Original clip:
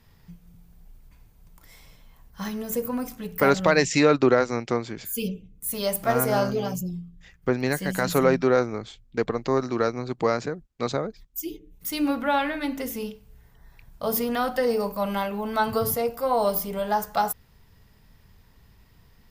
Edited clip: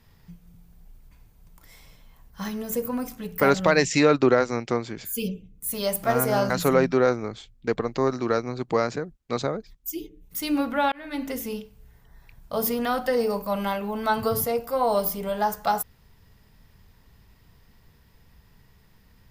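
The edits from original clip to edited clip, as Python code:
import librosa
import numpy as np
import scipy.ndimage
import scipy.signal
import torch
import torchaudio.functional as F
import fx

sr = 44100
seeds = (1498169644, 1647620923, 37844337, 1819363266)

y = fx.edit(x, sr, fx.cut(start_s=6.5, length_s=1.5),
    fx.fade_in_span(start_s=12.42, length_s=0.32), tone=tone)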